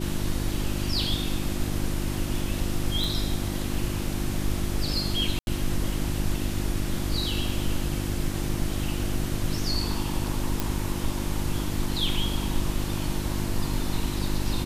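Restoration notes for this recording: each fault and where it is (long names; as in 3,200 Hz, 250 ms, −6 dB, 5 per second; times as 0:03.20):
mains hum 50 Hz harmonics 7 −31 dBFS
0:03.04: click
0:05.39–0:05.47: drop-out 81 ms
0:10.60: click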